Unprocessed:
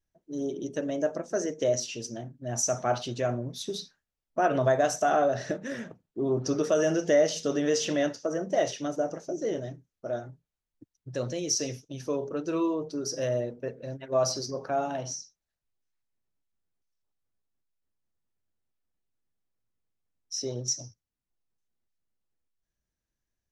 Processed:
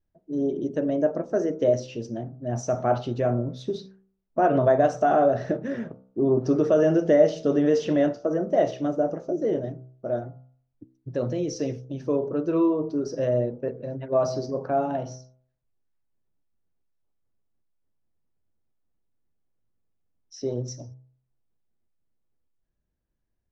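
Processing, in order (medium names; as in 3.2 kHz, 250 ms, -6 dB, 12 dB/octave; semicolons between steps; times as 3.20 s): low-pass 4.8 kHz 12 dB/octave; tilt shelf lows +7.5 dB, about 1.4 kHz; de-hum 64.11 Hz, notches 23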